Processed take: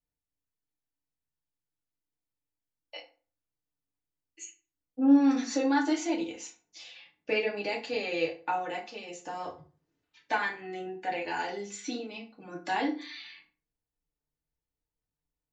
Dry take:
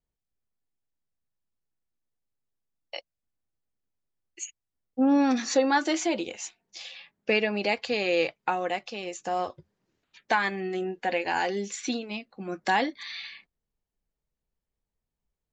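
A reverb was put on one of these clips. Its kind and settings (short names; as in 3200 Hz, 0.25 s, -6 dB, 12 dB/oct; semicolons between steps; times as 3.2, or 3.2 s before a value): FDN reverb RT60 0.38 s, low-frequency decay 1.2×, high-frequency decay 0.7×, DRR -2.5 dB; gain -9.5 dB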